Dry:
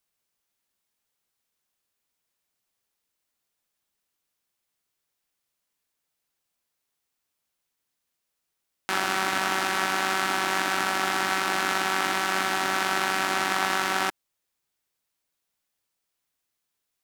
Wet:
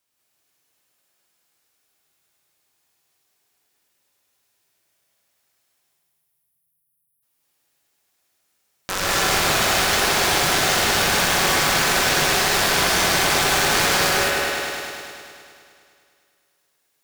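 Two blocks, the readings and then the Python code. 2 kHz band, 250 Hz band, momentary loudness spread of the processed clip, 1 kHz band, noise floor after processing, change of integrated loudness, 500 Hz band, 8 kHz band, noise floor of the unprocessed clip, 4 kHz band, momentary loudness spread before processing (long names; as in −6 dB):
+6.0 dB, +6.5 dB, 8 LU, +4.0 dB, −72 dBFS, +7.5 dB, +10.0 dB, +13.0 dB, −81 dBFS, +10.5 dB, 2 LU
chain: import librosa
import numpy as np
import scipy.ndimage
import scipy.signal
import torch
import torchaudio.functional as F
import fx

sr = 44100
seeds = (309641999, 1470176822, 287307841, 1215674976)

y = fx.cycle_switch(x, sr, every=2, mode='inverted')
y = fx.highpass(y, sr, hz=150.0, slope=6)
y = fx.spec_erase(y, sr, start_s=5.8, length_s=1.43, low_hz=200.0, high_hz=9000.0)
y = fx.low_shelf(y, sr, hz=200.0, db=4.5)
y = fx.echo_heads(y, sr, ms=103, heads='first and second', feedback_pct=63, wet_db=-6.5)
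y = fx.cheby_harmonics(y, sr, harmonics=(7,), levels_db=(-7,), full_scale_db=-7.0)
y = fx.rev_gated(y, sr, seeds[0], gate_ms=220, shape='rising', drr_db=-3.5)
y = F.gain(torch.from_numpy(y), -2.5).numpy()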